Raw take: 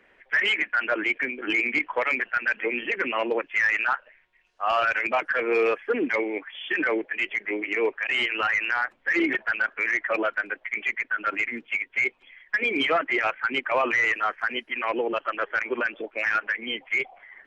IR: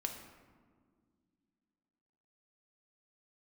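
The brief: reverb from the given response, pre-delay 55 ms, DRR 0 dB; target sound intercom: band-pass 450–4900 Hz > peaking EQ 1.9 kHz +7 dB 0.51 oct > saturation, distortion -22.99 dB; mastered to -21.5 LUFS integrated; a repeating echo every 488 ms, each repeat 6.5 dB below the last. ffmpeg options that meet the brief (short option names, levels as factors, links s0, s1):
-filter_complex "[0:a]aecho=1:1:488|976|1464|1952|2440|2928:0.473|0.222|0.105|0.0491|0.0231|0.0109,asplit=2[s0][s1];[1:a]atrim=start_sample=2205,adelay=55[s2];[s1][s2]afir=irnorm=-1:irlink=0,volume=1[s3];[s0][s3]amix=inputs=2:normalize=0,highpass=450,lowpass=4900,equalizer=f=1900:t=o:w=0.51:g=7,asoftclip=threshold=0.422,volume=0.708"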